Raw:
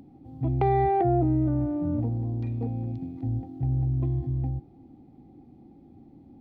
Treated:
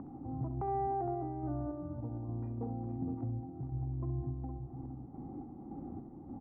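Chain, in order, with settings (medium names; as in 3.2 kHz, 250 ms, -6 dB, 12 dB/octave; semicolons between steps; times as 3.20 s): low-pass 1.5 kHz 24 dB/octave; peaking EQ 1.1 kHz +9 dB 0.82 oct; peak limiter -19 dBFS, peak gain reduction 9.5 dB; compression 8:1, threshold -40 dBFS, peak gain reduction 16.5 dB; random-step tremolo; multi-tap echo 66/463 ms -11.5/-10 dB; trim +7 dB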